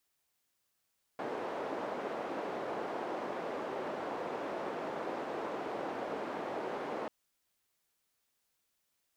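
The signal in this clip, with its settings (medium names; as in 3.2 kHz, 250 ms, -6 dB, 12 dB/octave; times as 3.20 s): noise band 400–580 Hz, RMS -38.5 dBFS 5.89 s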